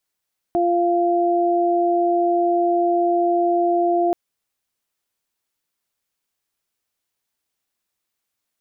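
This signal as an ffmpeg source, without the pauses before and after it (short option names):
-f lavfi -i "aevalsrc='0.119*sin(2*PI*347*t)+0.126*sin(2*PI*694*t)':d=3.58:s=44100"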